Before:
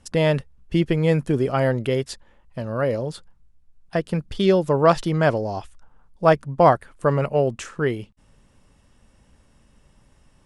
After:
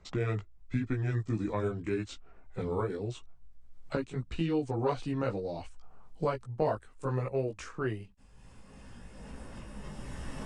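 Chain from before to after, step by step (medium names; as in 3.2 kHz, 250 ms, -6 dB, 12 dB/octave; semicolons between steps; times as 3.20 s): pitch bend over the whole clip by -5.5 st ending unshifted; recorder AGC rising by 10 dB/s; chorus voices 6, 0.87 Hz, delay 17 ms, depth 2.4 ms; three bands compressed up and down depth 40%; trim -8.5 dB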